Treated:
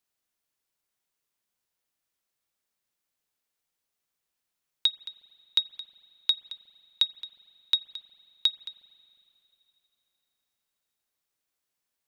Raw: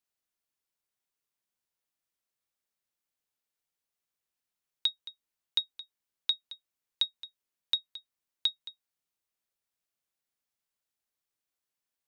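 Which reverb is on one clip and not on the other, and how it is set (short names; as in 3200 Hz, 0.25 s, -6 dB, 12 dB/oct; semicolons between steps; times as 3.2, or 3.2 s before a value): spring tank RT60 3.2 s, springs 40/45 ms, chirp 50 ms, DRR 18.5 dB; gain +4.5 dB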